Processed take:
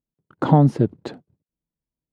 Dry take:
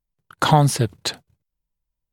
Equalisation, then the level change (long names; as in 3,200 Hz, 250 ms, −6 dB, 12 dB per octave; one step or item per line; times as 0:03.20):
resonant band-pass 270 Hz, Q 1.3
+7.0 dB